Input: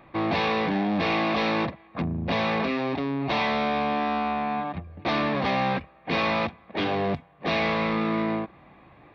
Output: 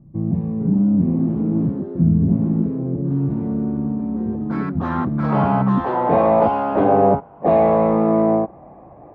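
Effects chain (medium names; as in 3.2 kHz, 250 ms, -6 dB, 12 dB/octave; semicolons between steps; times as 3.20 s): low-pass sweep 170 Hz -> 690 Hz, 5.63–6.14 s; ever faster or slower copies 487 ms, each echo +4 st, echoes 3, each echo -6 dB; trim +7.5 dB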